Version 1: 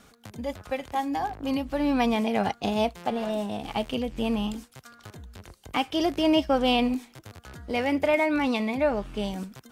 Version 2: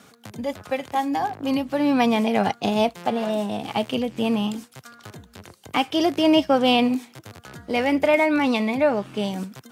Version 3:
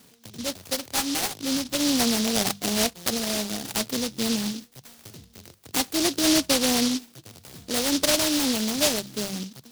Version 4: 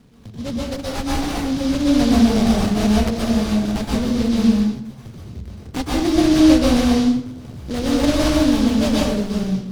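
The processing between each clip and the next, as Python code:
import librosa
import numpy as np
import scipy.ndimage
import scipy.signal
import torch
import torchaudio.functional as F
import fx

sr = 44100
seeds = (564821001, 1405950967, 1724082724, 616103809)

y1 = scipy.signal.sosfilt(scipy.signal.butter(4, 100.0, 'highpass', fs=sr, output='sos'), x)
y1 = F.gain(torch.from_numpy(y1), 4.5).numpy()
y2 = fx.env_lowpass_down(y1, sr, base_hz=980.0, full_db=-14.0)
y2 = fx.hum_notches(y2, sr, base_hz=50, count=4)
y2 = fx.noise_mod_delay(y2, sr, seeds[0], noise_hz=4400.0, depth_ms=0.29)
y2 = F.gain(torch.from_numpy(y2), -3.0).numpy()
y3 = fx.riaa(y2, sr, side='playback')
y3 = fx.rev_plate(y3, sr, seeds[1], rt60_s=0.69, hf_ratio=0.7, predelay_ms=110, drr_db=-4.5)
y3 = F.gain(torch.from_numpy(y3), -1.0).numpy()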